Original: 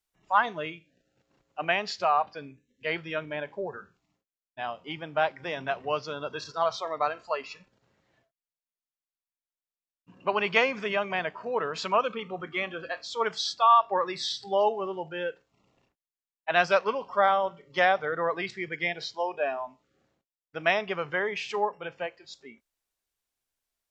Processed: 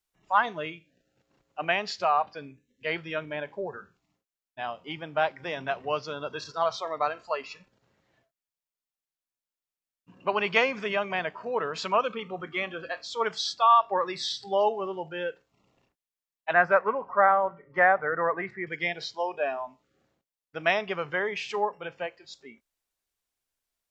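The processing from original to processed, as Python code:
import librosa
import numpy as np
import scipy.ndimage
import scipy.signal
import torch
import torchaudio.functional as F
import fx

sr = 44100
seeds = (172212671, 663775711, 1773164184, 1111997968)

y = fx.curve_eq(x, sr, hz=(410.0, 1900.0, 3200.0), db=(0, 4, -23), at=(16.53, 18.67))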